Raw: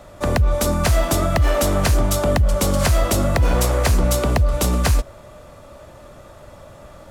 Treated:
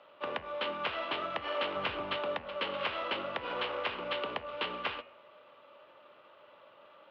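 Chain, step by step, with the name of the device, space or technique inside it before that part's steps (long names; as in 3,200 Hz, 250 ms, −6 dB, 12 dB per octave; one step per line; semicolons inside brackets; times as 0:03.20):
toy sound module (linearly interpolated sample-rate reduction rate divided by 6×; switching amplifier with a slow clock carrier 14,000 Hz; loudspeaker in its box 590–3,800 Hz, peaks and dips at 700 Hz −9 dB, 1,800 Hz −5 dB, 2,900 Hz +8 dB)
0:01.76–0:02.17: low-shelf EQ 180 Hz +9.5 dB
hum removal 79.76 Hz, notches 37
level −8 dB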